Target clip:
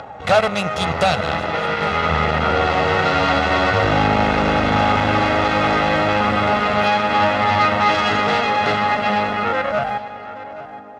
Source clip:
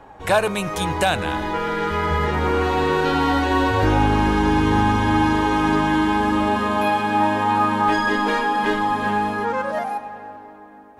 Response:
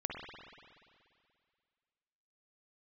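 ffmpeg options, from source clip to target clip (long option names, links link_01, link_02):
-af "aeval=exprs='0.422*(cos(1*acos(clip(val(0)/0.422,-1,1)))-cos(1*PI/2))+0.119*(cos(4*acos(clip(val(0)/0.422,-1,1)))-cos(4*PI/2))+0.0473*(cos(8*acos(clip(val(0)/0.422,-1,1)))-cos(8*PI/2))':channel_layout=same,acompressor=mode=upward:threshold=-27dB:ratio=2.5,highpass=100,lowpass=4800,aecho=1:1:1.5:0.58,aecho=1:1:819:0.15"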